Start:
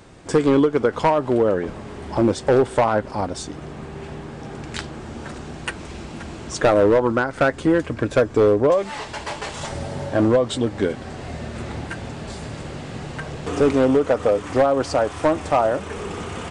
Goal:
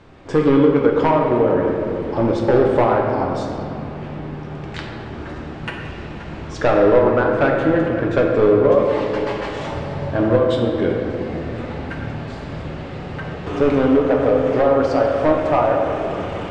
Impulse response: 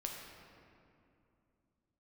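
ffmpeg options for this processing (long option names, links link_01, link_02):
-filter_complex "[0:a]lowpass=3600[link_01];[1:a]atrim=start_sample=2205,asetrate=42777,aresample=44100[link_02];[link_01][link_02]afir=irnorm=-1:irlink=0,volume=2.5dB"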